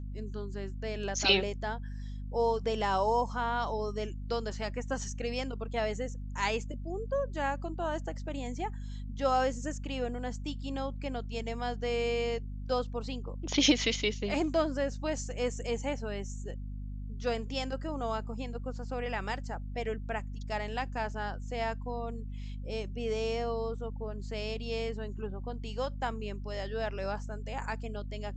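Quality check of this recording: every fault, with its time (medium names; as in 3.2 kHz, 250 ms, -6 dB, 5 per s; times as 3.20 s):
hum 50 Hz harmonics 5 -39 dBFS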